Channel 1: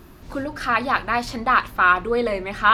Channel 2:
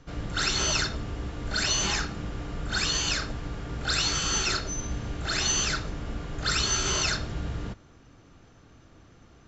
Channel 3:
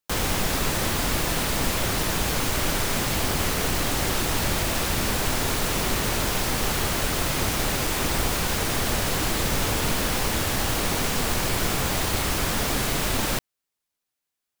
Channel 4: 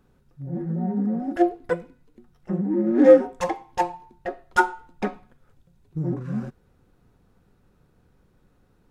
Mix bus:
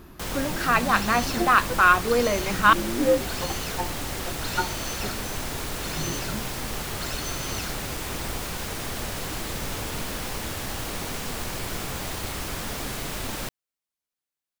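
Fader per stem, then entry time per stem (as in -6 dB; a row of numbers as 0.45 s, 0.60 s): -1.0 dB, -10.0 dB, -7.0 dB, -8.5 dB; 0.00 s, 0.55 s, 0.10 s, 0.00 s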